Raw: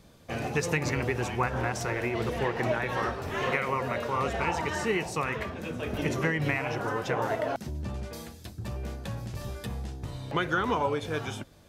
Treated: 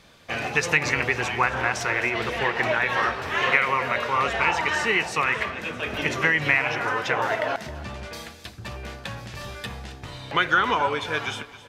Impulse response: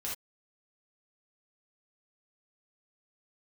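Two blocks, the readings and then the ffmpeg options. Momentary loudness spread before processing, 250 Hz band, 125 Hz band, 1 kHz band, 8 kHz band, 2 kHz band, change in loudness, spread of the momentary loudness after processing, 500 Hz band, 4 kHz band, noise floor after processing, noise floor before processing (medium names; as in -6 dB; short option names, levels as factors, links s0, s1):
10 LU, -1.0 dB, -2.5 dB, +6.5 dB, +4.5 dB, +10.5 dB, +7.5 dB, 16 LU, +2.0 dB, +9.5 dB, -46 dBFS, -50 dBFS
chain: -filter_complex "[0:a]equalizer=f=2300:w=0.35:g=14,asplit=2[s0][s1];[s1]aecho=0:1:267|534|801:0.158|0.0602|0.0229[s2];[s0][s2]amix=inputs=2:normalize=0,volume=0.708"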